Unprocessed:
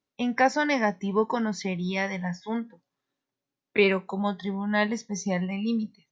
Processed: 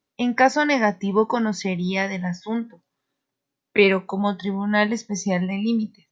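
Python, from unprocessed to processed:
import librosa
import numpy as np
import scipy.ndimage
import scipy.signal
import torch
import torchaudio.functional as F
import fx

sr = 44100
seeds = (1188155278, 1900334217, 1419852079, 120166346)

y = fx.dynamic_eq(x, sr, hz=1100.0, q=0.85, threshold_db=-43.0, ratio=4.0, max_db=-4, at=(2.02, 2.62))
y = y * 10.0 ** (5.0 / 20.0)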